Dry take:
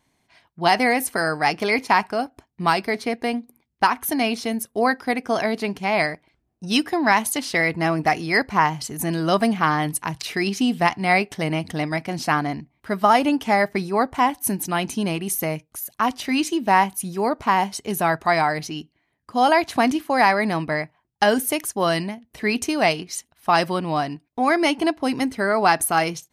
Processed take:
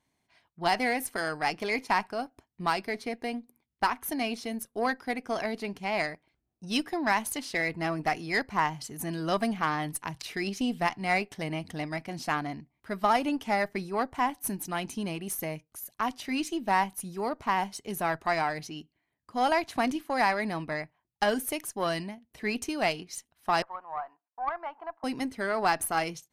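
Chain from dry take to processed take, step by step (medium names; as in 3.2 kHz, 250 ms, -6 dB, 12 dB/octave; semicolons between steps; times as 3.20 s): 23.62–25.04 s: Butterworth band-pass 1 kHz, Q 1.5; Chebyshev shaper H 6 -27 dB, 7 -37 dB, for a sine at -4 dBFS; trim -8.5 dB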